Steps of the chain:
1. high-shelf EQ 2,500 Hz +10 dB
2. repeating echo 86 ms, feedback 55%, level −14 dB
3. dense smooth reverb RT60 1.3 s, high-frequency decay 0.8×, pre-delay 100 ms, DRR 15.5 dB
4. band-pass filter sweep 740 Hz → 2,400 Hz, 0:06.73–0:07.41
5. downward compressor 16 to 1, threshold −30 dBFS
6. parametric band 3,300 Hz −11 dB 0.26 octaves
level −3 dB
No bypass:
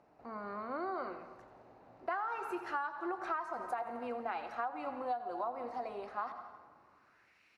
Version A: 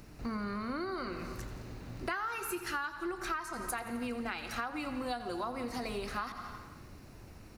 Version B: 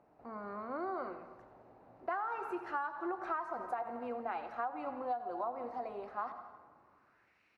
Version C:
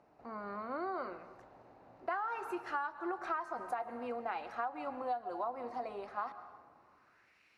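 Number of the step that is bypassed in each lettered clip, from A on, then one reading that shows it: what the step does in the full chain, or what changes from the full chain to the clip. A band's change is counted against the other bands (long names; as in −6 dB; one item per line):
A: 4, 4 kHz band +11.5 dB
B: 1, 2 kHz band −2.0 dB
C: 2, change in momentary loudness spread +2 LU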